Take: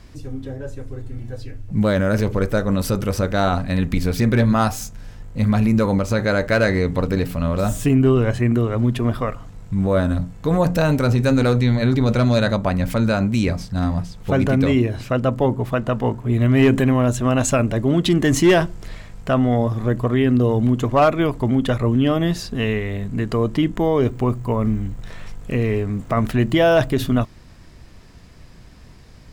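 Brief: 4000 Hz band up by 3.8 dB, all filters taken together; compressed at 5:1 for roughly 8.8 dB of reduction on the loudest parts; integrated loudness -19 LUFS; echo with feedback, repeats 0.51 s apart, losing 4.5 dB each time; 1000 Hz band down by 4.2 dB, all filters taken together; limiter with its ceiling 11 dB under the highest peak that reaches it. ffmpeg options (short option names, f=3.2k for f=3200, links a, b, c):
-af "equalizer=f=1k:t=o:g=-6.5,equalizer=f=4k:t=o:g=5,acompressor=threshold=-21dB:ratio=5,alimiter=limit=-22.5dB:level=0:latency=1,aecho=1:1:510|1020|1530|2040|2550|3060|3570|4080|4590:0.596|0.357|0.214|0.129|0.0772|0.0463|0.0278|0.0167|0.01,volume=11dB"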